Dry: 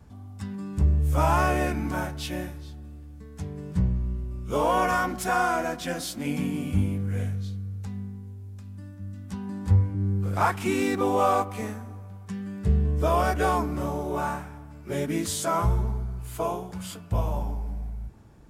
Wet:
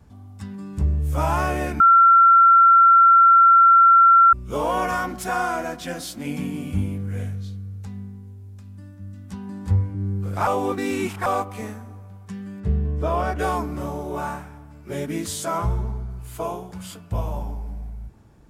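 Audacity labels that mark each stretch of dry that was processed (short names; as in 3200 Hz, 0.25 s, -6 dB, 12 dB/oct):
1.800000	4.330000	bleep 1360 Hz -9 dBFS
10.470000	11.260000	reverse
12.600000	13.390000	LPF 2700 Hz 6 dB/oct
15.580000	16.100000	high shelf 11000 Hz -9 dB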